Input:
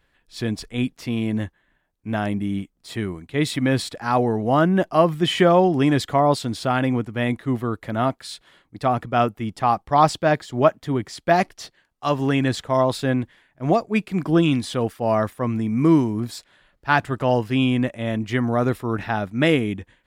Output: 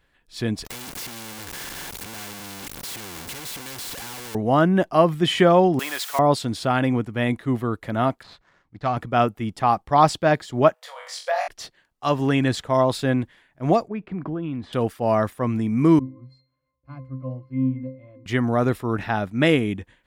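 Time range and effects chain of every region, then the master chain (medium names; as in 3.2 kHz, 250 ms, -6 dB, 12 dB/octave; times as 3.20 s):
0.65–4.35 s: one-bit comparator + comb of notches 630 Hz + spectrum-flattening compressor 2:1
5.79–6.19 s: word length cut 6-bit, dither triangular + high-pass 1 kHz
8.23–8.97 s: median filter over 15 samples + low-pass 4.9 kHz + peaking EQ 360 Hz -7 dB 2 oct
10.74–11.48 s: flutter echo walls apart 3.8 m, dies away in 0.35 s + compression 3:1, threshold -21 dBFS + brick-wall FIR high-pass 470 Hz
13.88–14.73 s: low-pass 1.6 kHz + compression 5:1, threshold -26 dBFS
15.99–18.26 s: high-pass 51 Hz + pitch-class resonator C, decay 0.38 s
whole clip: none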